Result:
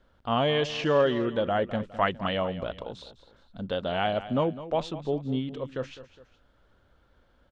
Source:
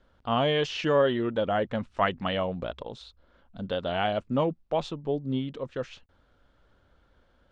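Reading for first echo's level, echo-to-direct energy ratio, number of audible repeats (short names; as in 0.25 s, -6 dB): -14.5 dB, -13.5 dB, 2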